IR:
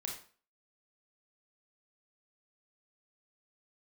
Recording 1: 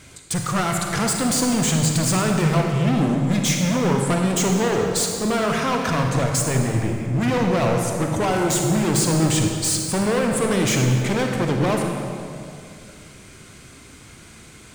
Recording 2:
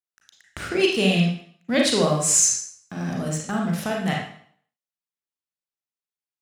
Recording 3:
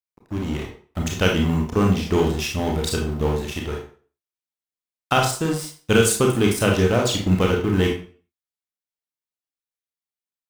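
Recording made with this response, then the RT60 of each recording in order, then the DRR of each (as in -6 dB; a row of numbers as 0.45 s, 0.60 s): 3; 2.5 s, 0.60 s, 0.40 s; 1.5 dB, -1.0 dB, 0.0 dB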